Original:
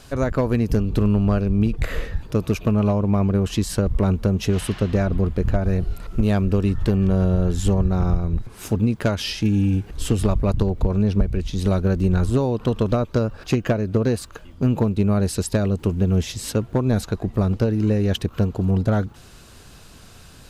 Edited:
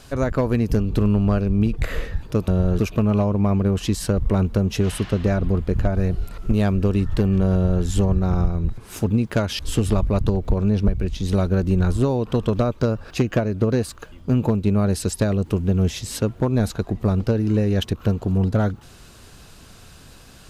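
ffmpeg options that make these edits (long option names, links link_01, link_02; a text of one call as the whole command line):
ffmpeg -i in.wav -filter_complex "[0:a]asplit=4[link_01][link_02][link_03][link_04];[link_01]atrim=end=2.482[link_05];[link_02]atrim=start=7.218:end=7.532[link_06];[link_03]atrim=start=2.478:end=9.282[link_07];[link_04]atrim=start=9.918[link_08];[link_05][link_06]acrossfade=duration=0.004:curve1=hsin:curve2=hsin[link_09];[link_09][link_07]acrossfade=duration=0.004:curve1=hsin:curve2=hsin[link_10];[link_10][link_08]acrossfade=duration=0.004:curve1=hsin:curve2=hsin" out.wav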